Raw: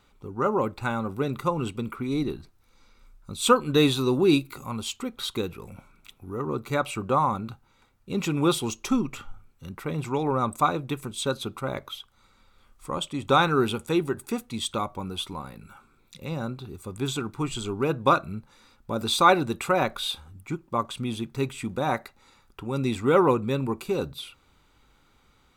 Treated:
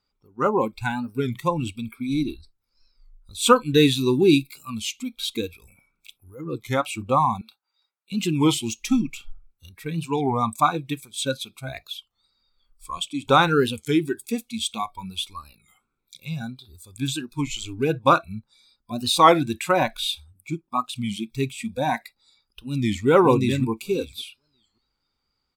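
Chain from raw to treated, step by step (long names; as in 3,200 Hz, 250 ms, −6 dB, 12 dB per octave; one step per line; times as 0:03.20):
0:22.66–0:23.07: delay throw 570 ms, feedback 20%, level −0.5 dB
noise reduction from a noise print of the clip's start 21 dB
0:07.41–0:08.12: high-pass filter 720 Hz 12 dB per octave
wow of a warped record 33 1/3 rpm, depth 160 cents
level +3.5 dB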